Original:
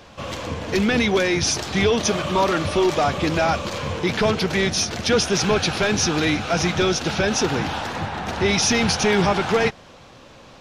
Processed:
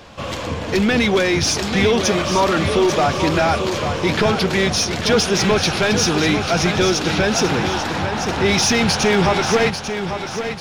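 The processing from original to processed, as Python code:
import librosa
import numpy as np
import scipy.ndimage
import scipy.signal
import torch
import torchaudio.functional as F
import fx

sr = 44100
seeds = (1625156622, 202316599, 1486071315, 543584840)

p1 = fx.notch(x, sr, hz=6000.0, q=29.0)
p2 = np.clip(p1, -10.0 ** (-20.0 / 20.0), 10.0 ** (-20.0 / 20.0))
p3 = p1 + (p2 * librosa.db_to_amplitude(-5.0))
y = fx.echo_feedback(p3, sr, ms=843, feedback_pct=40, wet_db=-8.5)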